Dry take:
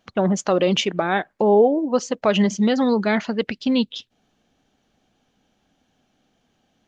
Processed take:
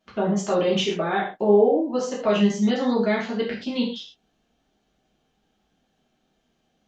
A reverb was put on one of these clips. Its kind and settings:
reverb whose tail is shaped and stops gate 160 ms falling, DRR −7 dB
level −11 dB

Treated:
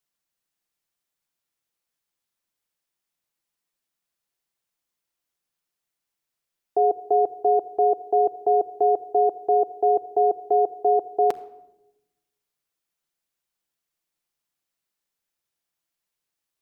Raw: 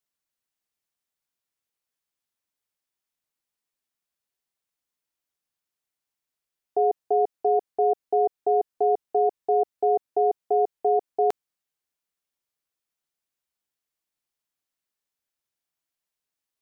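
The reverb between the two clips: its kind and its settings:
rectangular room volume 3,600 cubic metres, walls furnished, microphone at 0.8 metres
level +2.5 dB

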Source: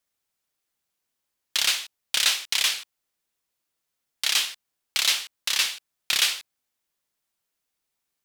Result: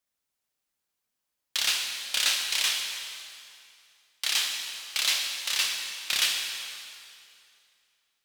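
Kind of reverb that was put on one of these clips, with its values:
dense smooth reverb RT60 2.5 s, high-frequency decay 0.9×, DRR 1.5 dB
level −4.5 dB

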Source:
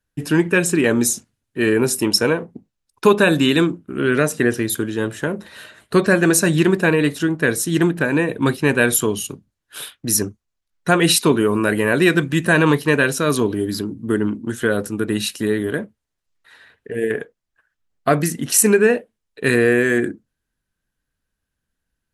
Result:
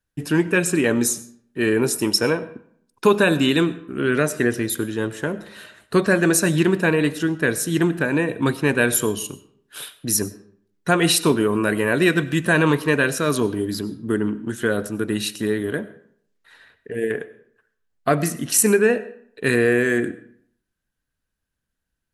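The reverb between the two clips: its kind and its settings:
comb and all-pass reverb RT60 0.63 s, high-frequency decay 0.7×, pre-delay 55 ms, DRR 16.5 dB
level −2.5 dB

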